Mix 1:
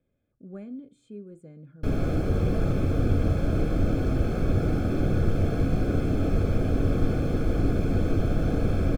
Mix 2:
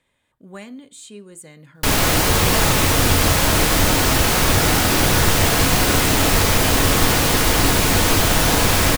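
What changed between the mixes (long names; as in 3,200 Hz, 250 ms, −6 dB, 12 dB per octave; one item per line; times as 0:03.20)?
background +4.0 dB
master: remove moving average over 46 samples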